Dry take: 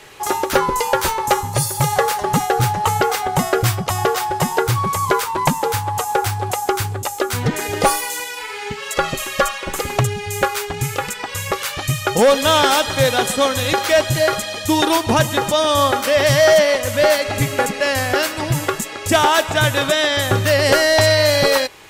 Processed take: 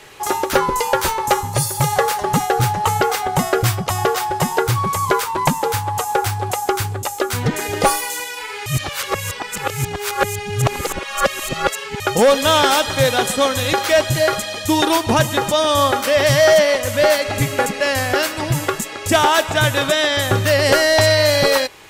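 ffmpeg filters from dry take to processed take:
ffmpeg -i in.wav -filter_complex "[0:a]asplit=3[link_01][link_02][link_03];[link_01]atrim=end=8.662[link_04];[link_02]atrim=start=8.658:end=12.002,asetpts=PTS-STARTPTS,areverse[link_05];[link_03]atrim=start=11.998[link_06];[link_04][link_05]acrossfade=duration=0.004:curve1=hsin:curve2=hsin[link_07];[link_07][link_06]acrossfade=duration=0.004:curve1=hsin:curve2=hsin" out.wav

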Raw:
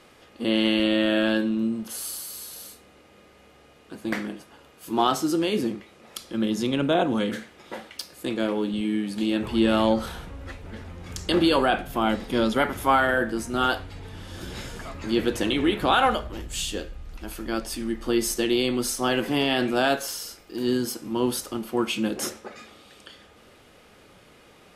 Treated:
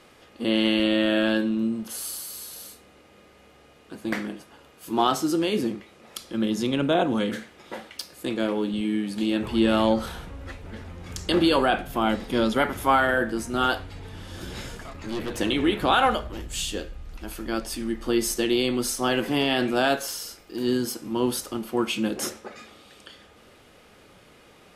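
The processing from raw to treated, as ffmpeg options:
ffmpeg -i in.wav -filter_complex "[0:a]asettb=1/sr,asplit=3[link_01][link_02][link_03];[link_01]atrim=end=14.754[link_04];[link_02]atrim=start=14.75:end=15.37,asetpts=PTS-STARTPTS,afade=type=in:duration=0.004:curve=qsin,afade=type=out:start_time=0.616:duration=0.004:curve=qsin,aeval=exprs='(tanh(20*val(0)+0.55)-tanh(0.55))/20':channel_layout=same[link_05];[link_03]atrim=start=15.366[link_06];[link_04][link_05]acrossfade=duration=0.004:curve1=hsin:curve2=qsin[link_07];[link_07][link_06]acrossfade=duration=0.004:curve1=qsin:curve2=hsin" out.wav

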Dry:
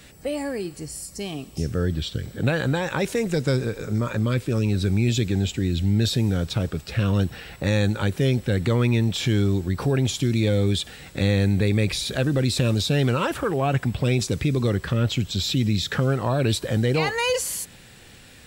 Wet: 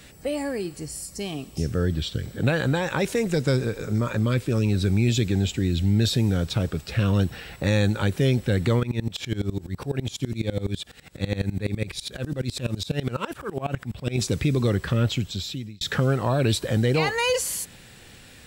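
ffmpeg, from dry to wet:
ffmpeg -i in.wav -filter_complex "[0:a]asplit=3[link_01][link_02][link_03];[link_01]afade=type=out:start_time=8.79:duration=0.02[link_04];[link_02]aeval=exprs='val(0)*pow(10,-22*if(lt(mod(-12*n/s,1),2*abs(-12)/1000),1-mod(-12*n/s,1)/(2*abs(-12)/1000),(mod(-12*n/s,1)-2*abs(-12)/1000)/(1-2*abs(-12)/1000))/20)':channel_layout=same,afade=type=in:start_time=8.79:duration=0.02,afade=type=out:start_time=14.16:duration=0.02[link_05];[link_03]afade=type=in:start_time=14.16:duration=0.02[link_06];[link_04][link_05][link_06]amix=inputs=3:normalize=0,asplit=2[link_07][link_08];[link_07]atrim=end=15.81,asetpts=PTS-STARTPTS,afade=type=out:start_time=15.03:duration=0.78[link_09];[link_08]atrim=start=15.81,asetpts=PTS-STARTPTS,afade=type=in:duration=0.004:curve=hsin[link_10];[link_09][link_10]concat=n=2:v=0:a=1" out.wav

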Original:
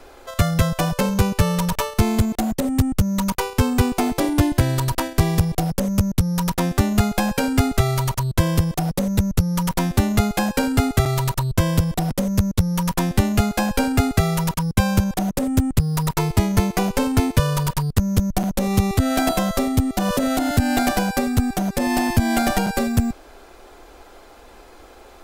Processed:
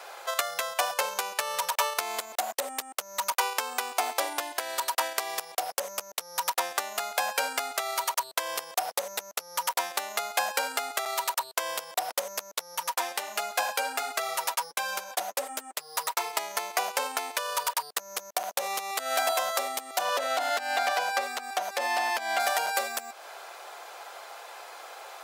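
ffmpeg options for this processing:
ffmpeg -i in.wav -filter_complex "[0:a]asettb=1/sr,asplit=3[link_01][link_02][link_03];[link_01]atrim=end=12.754[link_04];[link_02]atrim=start=12.75:end=16.33,asetpts=PTS-STARTPTS,afade=type=in:duration=0.004:curve=qsin,afade=type=out:start_time=3.576:duration=0.004:curve=qsin,flanger=delay=4.4:depth=4.6:regen=-23:speed=1.4:shape=sinusoidal[link_05];[link_03]atrim=start=16.326[link_06];[link_04][link_05]acrossfade=duration=0.004:curve1=hsin:curve2=qsin[link_07];[link_07][link_06]acrossfade=duration=0.004:curve1=qsin:curve2=hsin,asettb=1/sr,asplit=3[link_08][link_09][link_10];[link_08]atrim=end=20.014[link_11];[link_09]atrim=start=20.01:end=22.4,asetpts=PTS-STARTPTS,afade=type=in:duration=0.004:curve=qsin,afade=type=out:start_time=2.386:duration=0.004:curve=qsin,acrossover=split=5700[link_12][link_13];[link_13]acompressor=threshold=-41dB:ratio=4:attack=1:release=60[link_14];[link_12][link_14]amix=inputs=2:normalize=0[link_15];[link_10]atrim=start=22.396[link_16];[link_11][link_15]acrossfade=duration=0.004:curve1=hsin:curve2=qsin[link_17];[link_17][link_16]acrossfade=duration=0.004:curve1=qsin:curve2=hsin,acompressor=threshold=-24dB:ratio=6,highpass=frequency=620:width=0.5412,highpass=frequency=620:width=1.3066,volume=5dB" out.wav

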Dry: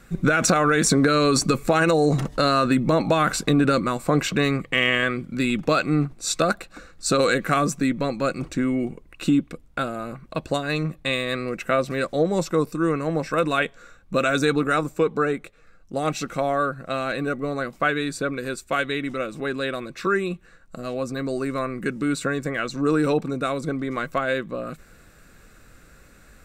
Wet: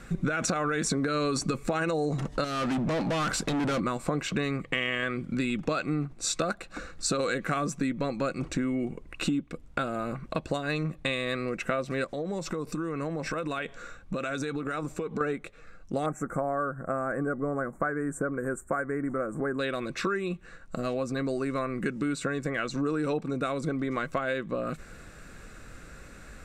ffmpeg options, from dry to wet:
ffmpeg -i in.wav -filter_complex "[0:a]asettb=1/sr,asplit=3[link_01][link_02][link_03];[link_01]atrim=end=2.444[link_04];[link_02]atrim=start=2.44:end=3.8,asetpts=PTS-STARTPTS,afade=type=in:duration=0.004:curve=qsin,afade=type=out:start_time=1.356:duration=0.004:curve=qsin,asoftclip=type=hard:threshold=-24.5dB[link_05];[link_03]atrim=start=3.796[link_06];[link_04][link_05]acrossfade=duration=0.004:curve1=hsin:curve2=qsin[link_07];[link_07][link_06]acrossfade=duration=0.004:curve1=qsin:curve2=hsin,asettb=1/sr,asplit=3[link_08][link_09][link_10];[link_08]atrim=end=12.044[link_11];[link_09]atrim=start=12.04:end=15.21,asetpts=PTS-STARTPTS,afade=type=in:duration=0.004:curve=qsin,afade=type=out:start_time=3.166:duration=0.004:curve=qsin,acompressor=threshold=-30dB:ratio=10:attack=3.2:release=140:knee=1:detection=peak[link_12];[link_10]atrim=start=15.206[link_13];[link_11][link_12]acrossfade=duration=0.004:curve1=hsin:curve2=qsin[link_14];[link_14][link_13]acrossfade=duration=0.004:curve1=qsin:curve2=hsin,asettb=1/sr,asplit=3[link_15][link_16][link_17];[link_15]atrim=end=16.064[link_18];[link_16]atrim=start=16.06:end=19.59,asetpts=PTS-STARTPTS,afade=type=in:duration=0.004:curve=qsin,afade=type=out:start_time=3.526:duration=0.004:curve=qsin,asuperstop=centerf=3700:order=8:qfactor=0.63[link_19];[link_17]atrim=start=19.586[link_20];[link_18][link_19]acrossfade=duration=0.004:curve1=hsin:curve2=qsin[link_21];[link_21][link_20]acrossfade=duration=0.004:curve1=qsin:curve2=hsin,lowpass=9000,equalizer=frequency=4400:width_type=o:width=0.77:gain=-2,acompressor=threshold=-32dB:ratio=4,volume=4dB" out.wav

